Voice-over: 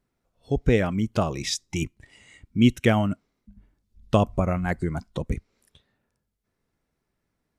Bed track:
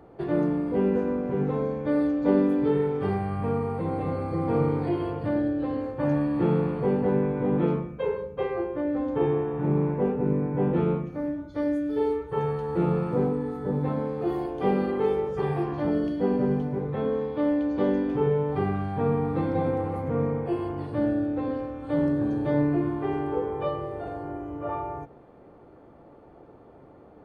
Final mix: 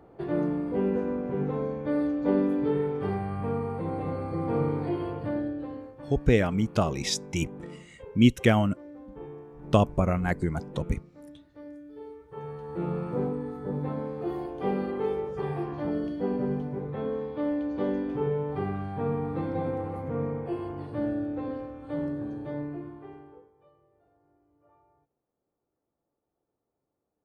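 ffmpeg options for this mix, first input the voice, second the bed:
-filter_complex "[0:a]adelay=5600,volume=0.891[s0];[1:a]volume=3.35,afade=t=out:st=5.19:d=0.87:silence=0.177828,afade=t=in:st=12.17:d=0.97:silence=0.211349,afade=t=out:st=21.45:d=2.06:silence=0.0375837[s1];[s0][s1]amix=inputs=2:normalize=0"

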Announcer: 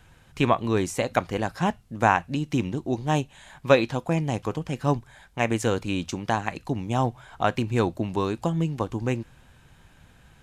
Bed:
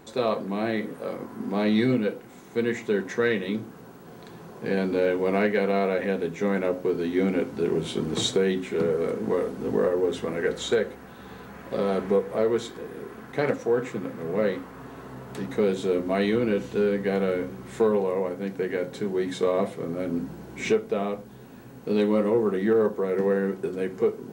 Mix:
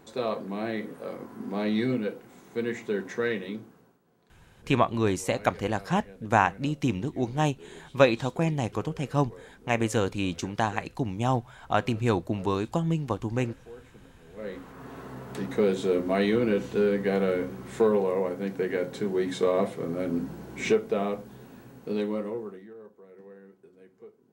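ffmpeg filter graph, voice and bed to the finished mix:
-filter_complex "[0:a]adelay=4300,volume=0.841[s0];[1:a]volume=7.5,afade=t=out:st=3.31:d=0.69:silence=0.125893,afade=t=in:st=14.34:d=0.6:silence=0.0794328,afade=t=out:st=21.29:d=1.39:silence=0.0562341[s1];[s0][s1]amix=inputs=2:normalize=0"

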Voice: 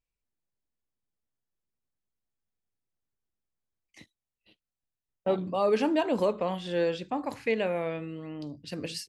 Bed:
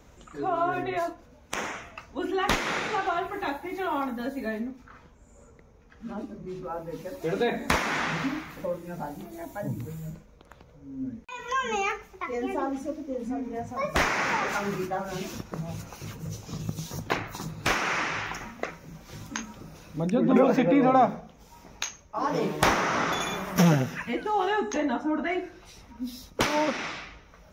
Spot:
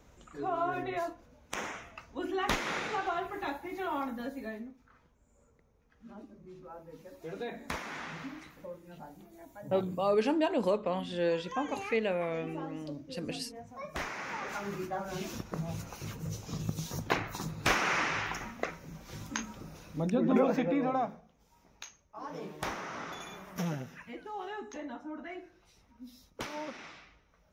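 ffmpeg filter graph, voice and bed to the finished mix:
-filter_complex "[0:a]adelay=4450,volume=0.75[s0];[1:a]volume=1.88,afade=t=out:st=4.16:d=0.6:silence=0.421697,afade=t=in:st=14.27:d=1.28:silence=0.281838,afade=t=out:st=19.66:d=1.54:silence=0.237137[s1];[s0][s1]amix=inputs=2:normalize=0"

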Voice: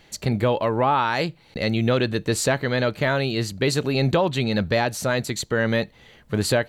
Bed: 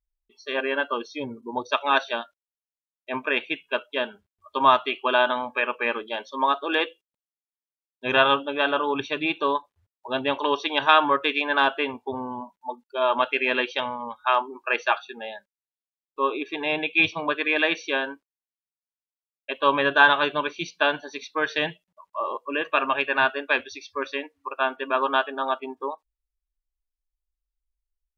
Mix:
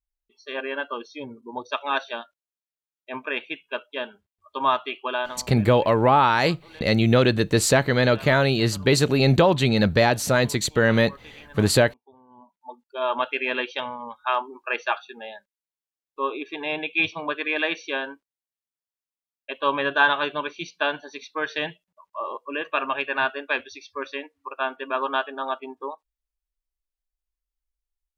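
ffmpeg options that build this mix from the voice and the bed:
-filter_complex "[0:a]adelay=5250,volume=1.41[s0];[1:a]volume=7.08,afade=t=out:st=5.02:d=0.53:silence=0.105925,afade=t=in:st=12.27:d=0.83:silence=0.0891251[s1];[s0][s1]amix=inputs=2:normalize=0"

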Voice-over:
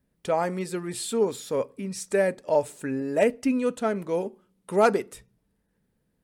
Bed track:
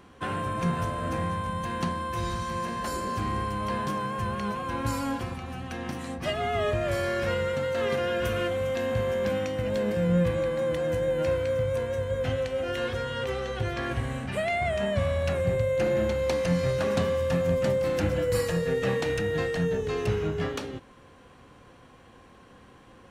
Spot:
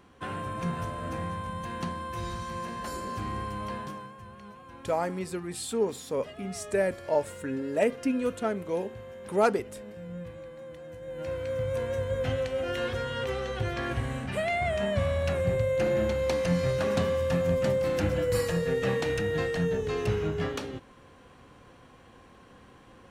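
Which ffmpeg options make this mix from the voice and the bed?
-filter_complex "[0:a]adelay=4600,volume=0.668[s0];[1:a]volume=3.55,afade=t=out:st=3.61:d=0.55:silence=0.251189,afade=t=in:st=11:d=0.9:silence=0.16788[s1];[s0][s1]amix=inputs=2:normalize=0"

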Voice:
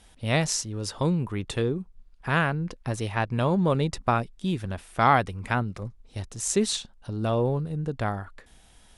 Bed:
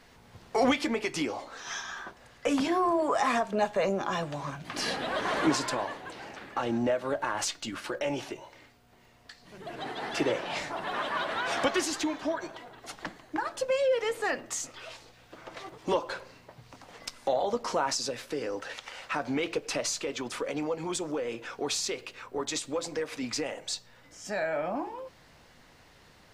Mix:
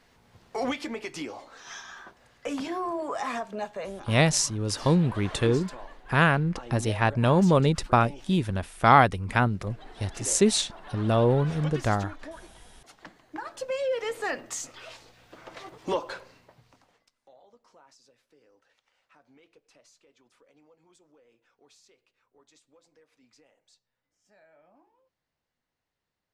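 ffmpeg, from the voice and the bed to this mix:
-filter_complex "[0:a]adelay=3850,volume=1.41[s0];[1:a]volume=2.11,afade=t=out:st=3.42:d=0.68:silence=0.446684,afade=t=in:st=12.82:d=1.42:silence=0.266073,afade=t=out:st=16.03:d=1.02:silence=0.0375837[s1];[s0][s1]amix=inputs=2:normalize=0"

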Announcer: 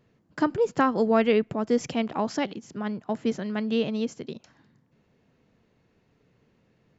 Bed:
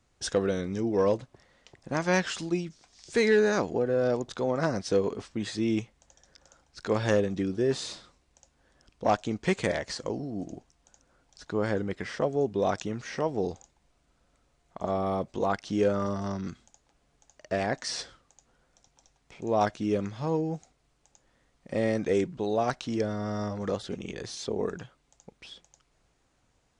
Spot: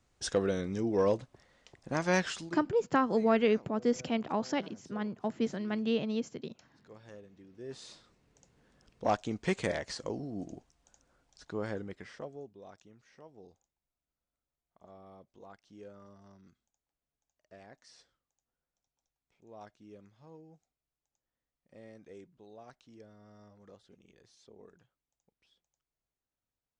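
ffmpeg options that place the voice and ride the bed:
-filter_complex "[0:a]adelay=2150,volume=0.562[s0];[1:a]volume=8.91,afade=t=out:st=2.27:d=0.37:silence=0.0668344,afade=t=in:st=7.5:d=1.09:silence=0.0794328,afade=t=out:st=11.08:d=1.48:silence=0.0944061[s1];[s0][s1]amix=inputs=2:normalize=0"

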